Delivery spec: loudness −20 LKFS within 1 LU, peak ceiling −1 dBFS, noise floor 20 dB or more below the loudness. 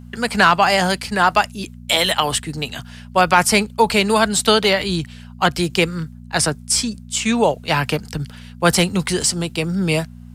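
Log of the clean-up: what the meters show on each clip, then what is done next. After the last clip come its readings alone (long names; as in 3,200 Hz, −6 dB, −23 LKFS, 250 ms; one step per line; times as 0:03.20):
number of dropouts 1; longest dropout 1.4 ms; mains hum 60 Hz; hum harmonics up to 240 Hz; level of the hum −36 dBFS; integrated loudness −18.0 LKFS; sample peak −2.0 dBFS; target loudness −20.0 LKFS
→ repair the gap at 0:04.64, 1.4 ms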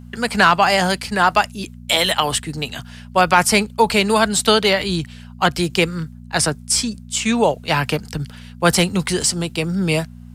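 number of dropouts 0; mains hum 60 Hz; hum harmonics up to 240 Hz; level of the hum −36 dBFS
→ hum removal 60 Hz, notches 4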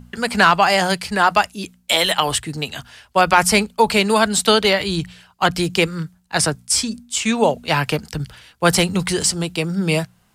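mains hum none found; integrated loudness −18.0 LKFS; sample peak −2.0 dBFS; target loudness −20.0 LKFS
→ level −2 dB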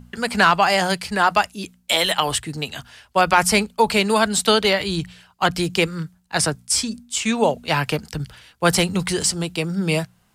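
integrated loudness −20.0 LKFS; sample peak −4.0 dBFS; background noise floor −60 dBFS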